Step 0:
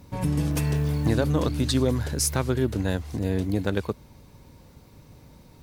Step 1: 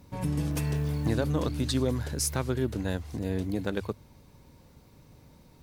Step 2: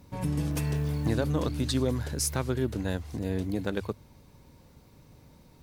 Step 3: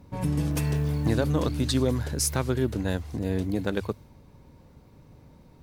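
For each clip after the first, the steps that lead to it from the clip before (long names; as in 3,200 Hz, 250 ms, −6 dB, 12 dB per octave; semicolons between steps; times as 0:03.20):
mains-hum notches 50/100 Hz; level −4.5 dB
no processing that can be heard
one half of a high-frequency compander decoder only; level +3 dB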